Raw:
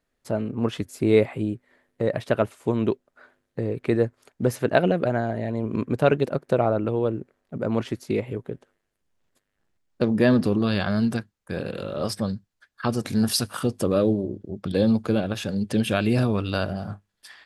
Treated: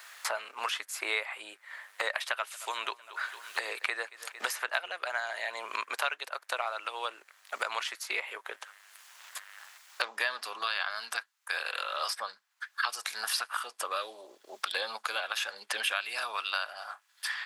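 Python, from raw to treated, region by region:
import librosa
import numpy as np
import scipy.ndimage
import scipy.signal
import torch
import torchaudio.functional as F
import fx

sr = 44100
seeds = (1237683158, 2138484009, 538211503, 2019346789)

y = fx.chain(x, sr, fx.echo_feedback(ms=227, feedback_pct=52, wet_db=-24),
    fx.band_squash(depth_pct=40), at=(2.15, 4.92))
y = scipy.signal.sosfilt(scipy.signal.butter(4, 990.0, 'highpass', fs=sr, output='sos'), y)
y = fx.band_squash(y, sr, depth_pct=100)
y = y * librosa.db_to_amplitude(2.5)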